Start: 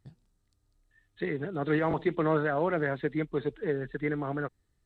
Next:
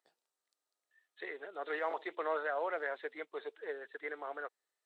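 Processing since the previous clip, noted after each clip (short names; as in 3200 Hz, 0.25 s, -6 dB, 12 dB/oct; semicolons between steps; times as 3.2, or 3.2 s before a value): HPF 500 Hz 24 dB/oct; gain -5 dB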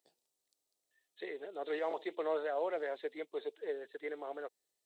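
bell 1400 Hz -15 dB 1.6 oct; gain +6 dB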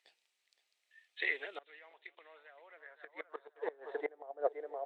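thinning echo 0.518 s, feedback 31%, high-pass 400 Hz, level -13 dB; flipped gate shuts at -32 dBFS, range -25 dB; band-pass sweep 2300 Hz -> 630 Hz, 2.48–4.41; gain +18 dB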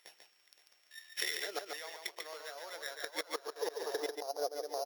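sample sorter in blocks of 8 samples; compressor 10:1, threshold -45 dBFS, peak gain reduction 19.5 dB; on a send: echo 0.143 s -5 dB; on the sum: gain +11 dB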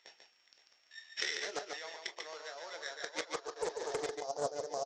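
on a send at -10 dB: reverb, pre-delay 16 ms; on the sum: downsampling 16000 Hz; Doppler distortion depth 0.28 ms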